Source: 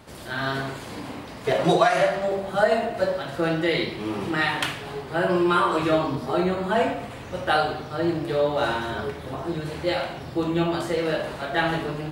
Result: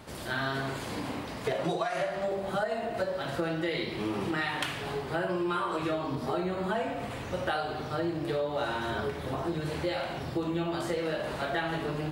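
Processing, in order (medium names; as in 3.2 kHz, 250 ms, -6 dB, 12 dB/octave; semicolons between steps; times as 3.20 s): compression, threshold -28 dBFS, peak gain reduction 14 dB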